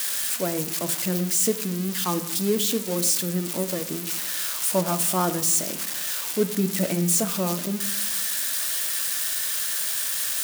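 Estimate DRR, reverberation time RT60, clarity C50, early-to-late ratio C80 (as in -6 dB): 9.5 dB, 0.90 s, 13.5 dB, 16.5 dB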